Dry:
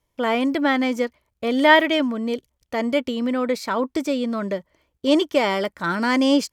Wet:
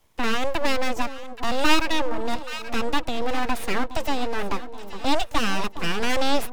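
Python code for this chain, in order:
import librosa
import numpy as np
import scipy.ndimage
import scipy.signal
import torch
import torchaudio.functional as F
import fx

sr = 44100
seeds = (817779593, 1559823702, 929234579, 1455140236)

y = np.abs(x)
y = fx.echo_alternate(y, sr, ms=413, hz=1100.0, feedback_pct=70, wet_db=-14.0)
y = fx.band_squash(y, sr, depth_pct=40)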